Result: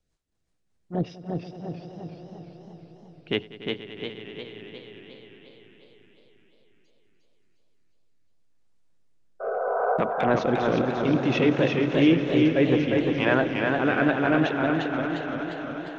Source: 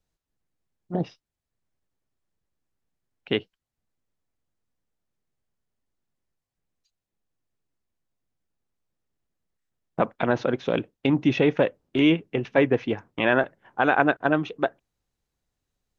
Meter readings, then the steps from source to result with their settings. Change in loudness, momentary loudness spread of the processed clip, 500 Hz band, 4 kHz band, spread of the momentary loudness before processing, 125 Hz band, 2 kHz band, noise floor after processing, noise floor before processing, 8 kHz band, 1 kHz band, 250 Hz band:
0.0 dB, 19 LU, +1.0 dB, +1.5 dB, 10 LU, +3.0 dB, 0.0 dB, −69 dBFS, below −85 dBFS, can't be measured, +0.5 dB, +2.5 dB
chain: healed spectral selection 0:09.43–0:09.94, 390–1,600 Hz after
in parallel at −1.5 dB: downward compressor, threshold −28 dBFS, peak gain reduction 13.5 dB
on the sum: transient designer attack −6 dB, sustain +1 dB
rotating-speaker cabinet horn 5 Hz, later 0.7 Hz, at 0:03.83
on a send: echo that builds up and dies away 96 ms, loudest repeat 5, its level −16 dB
on the sum: downsampling to 22,050 Hz
feedback echo with a swinging delay time 351 ms, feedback 54%, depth 93 cents, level −3.5 dB

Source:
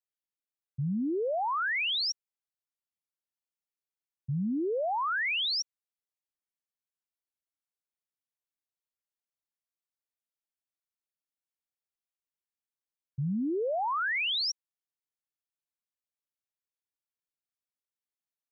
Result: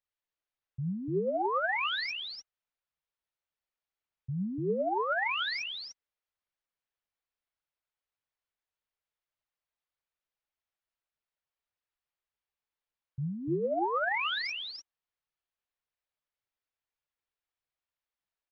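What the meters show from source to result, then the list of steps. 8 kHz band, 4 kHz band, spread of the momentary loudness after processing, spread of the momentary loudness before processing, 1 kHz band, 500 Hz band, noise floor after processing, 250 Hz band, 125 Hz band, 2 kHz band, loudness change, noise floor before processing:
can't be measured, −4.5 dB, 12 LU, 12 LU, 0.0 dB, +1.0 dB, below −85 dBFS, −3.0 dB, −1.5 dB, −0.5 dB, −2.0 dB, below −85 dBFS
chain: parametric band 240 Hz −11.5 dB 1.2 octaves
brickwall limiter −32.5 dBFS, peak gain reduction 5.5 dB
phase shifter 1.7 Hz, delay 4.9 ms, feedback 37%
high-frequency loss of the air 220 metres
on a send: single-tap delay 295 ms −4 dB
on the sum: level +5 dB

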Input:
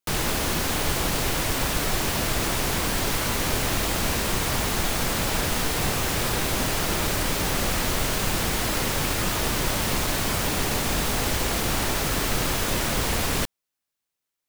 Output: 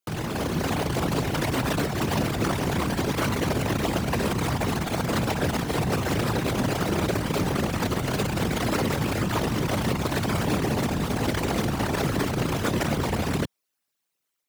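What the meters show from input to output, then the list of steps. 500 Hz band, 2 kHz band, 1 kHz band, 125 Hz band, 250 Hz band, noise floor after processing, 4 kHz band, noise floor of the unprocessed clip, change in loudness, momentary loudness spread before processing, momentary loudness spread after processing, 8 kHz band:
+2.0 dB, −3.5 dB, −0.5 dB, +3.0 dB, +4.5 dB, −80 dBFS, −6.5 dB, −84 dBFS, −2.0 dB, 0 LU, 1 LU, −9.5 dB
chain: spectral envelope exaggerated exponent 2
high-pass filter 110 Hz 12 dB per octave
automatic gain control gain up to 4 dB

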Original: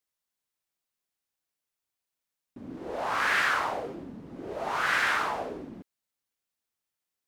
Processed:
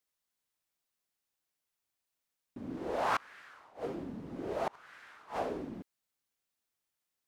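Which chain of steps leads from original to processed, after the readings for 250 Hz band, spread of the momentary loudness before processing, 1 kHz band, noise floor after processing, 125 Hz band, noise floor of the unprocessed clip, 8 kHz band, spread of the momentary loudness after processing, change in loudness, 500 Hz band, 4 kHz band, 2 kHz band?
−1.0 dB, 19 LU, −8.0 dB, below −85 dBFS, −1.5 dB, below −85 dBFS, −14.0 dB, 20 LU, −10.0 dB, −2.0 dB, −15.0 dB, −17.5 dB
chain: gate with flip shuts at −20 dBFS, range −29 dB

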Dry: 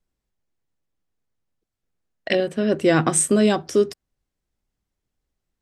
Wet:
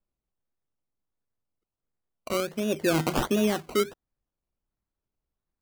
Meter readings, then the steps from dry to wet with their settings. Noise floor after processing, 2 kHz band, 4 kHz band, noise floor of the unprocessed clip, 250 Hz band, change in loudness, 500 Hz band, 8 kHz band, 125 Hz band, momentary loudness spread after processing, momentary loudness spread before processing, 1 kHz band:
below −85 dBFS, −6.0 dB, −3.5 dB, −83 dBFS, −7.0 dB, −7.0 dB, −7.5 dB, −14.0 dB, −6.5 dB, 6 LU, 6 LU, −5.0 dB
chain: Butterworth band-reject 2,300 Hz, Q 1.1
sample-and-hold swept by an LFO 20×, swing 60% 1.4 Hz
level −7 dB

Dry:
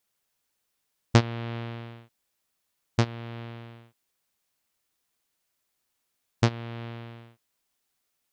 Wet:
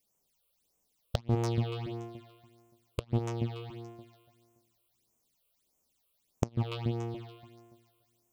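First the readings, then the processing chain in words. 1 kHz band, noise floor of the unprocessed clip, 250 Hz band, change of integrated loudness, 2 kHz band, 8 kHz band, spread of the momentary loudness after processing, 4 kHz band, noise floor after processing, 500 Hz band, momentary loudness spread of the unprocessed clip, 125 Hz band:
−6.0 dB, −79 dBFS, −3.5 dB, −5.0 dB, −12.5 dB, −6.0 dB, 18 LU, −7.0 dB, −77 dBFS, −2.5 dB, 20 LU, −3.5 dB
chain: parametric band 100 Hz −6.5 dB 0.42 octaves
on a send: delay that swaps between a low-pass and a high-pass 143 ms, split 1,000 Hz, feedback 56%, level −3 dB
on the sum: gate with flip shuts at −10 dBFS, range −26 dB
all-pass phaser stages 8, 1.6 Hz, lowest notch 230–4,200 Hz
in parallel at −4.5 dB: wave folding −26.5 dBFS
on the sum: parametric band 1,600 Hz −12 dB 0.94 octaves

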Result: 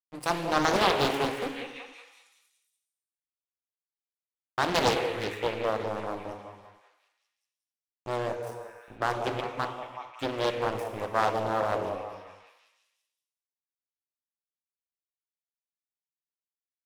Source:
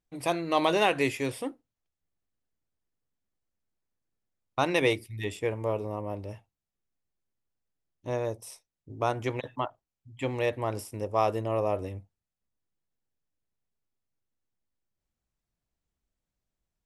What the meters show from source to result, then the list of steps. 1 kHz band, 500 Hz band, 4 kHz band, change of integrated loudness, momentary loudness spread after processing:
+3.0 dB, 0.0 dB, +4.0 dB, +0.5 dB, 17 LU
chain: high-pass filter 97 Hz 12 dB per octave
in parallel at −3 dB: downward compressor, threshold −38 dBFS, peak gain reduction 17.5 dB
on the sum: dead-zone distortion −37.5 dBFS
on a send: echo through a band-pass that steps 187 ms, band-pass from 630 Hz, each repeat 0.7 octaves, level −6 dB
on the sum: reverb whose tail is shaped and stops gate 490 ms falling, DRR 4 dB
highs frequency-modulated by the lows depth 0.88 ms

